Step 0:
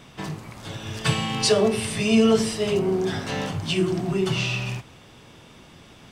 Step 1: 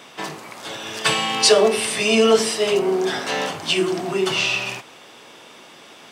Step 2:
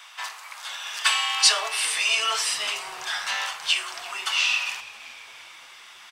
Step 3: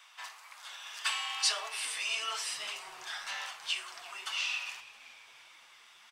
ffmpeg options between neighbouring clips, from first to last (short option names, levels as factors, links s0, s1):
-af "highpass=390,volume=2.24"
-filter_complex "[0:a]highpass=f=980:w=0.5412,highpass=f=980:w=1.3066,asplit=6[s0][s1][s2][s3][s4][s5];[s1]adelay=336,afreqshift=-150,volume=0.112[s6];[s2]adelay=672,afreqshift=-300,volume=0.0676[s7];[s3]adelay=1008,afreqshift=-450,volume=0.0403[s8];[s4]adelay=1344,afreqshift=-600,volume=0.0243[s9];[s5]adelay=1680,afreqshift=-750,volume=0.0146[s10];[s0][s6][s7][s8][s9][s10]amix=inputs=6:normalize=0,volume=0.891"
-af "flanger=delay=3.2:depth=5.7:regen=64:speed=1.8:shape=triangular,volume=0.447"